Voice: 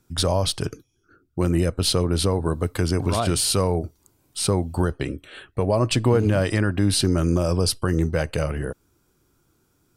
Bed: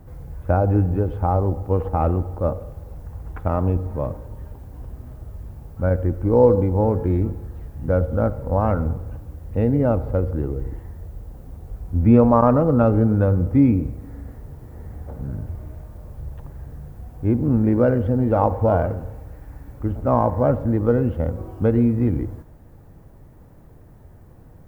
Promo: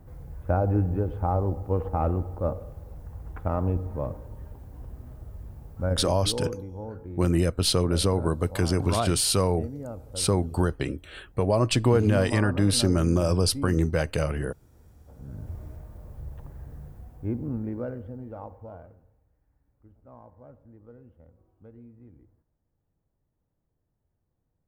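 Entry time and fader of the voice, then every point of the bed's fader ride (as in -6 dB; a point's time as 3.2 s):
5.80 s, -2.0 dB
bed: 5.8 s -5.5 dB
6.48 s -18.5 dB
15.01 s -18.5 dB
15.52 s -5.5 dB
16.85 s -5.5 dB
19.3 s -31.5 dB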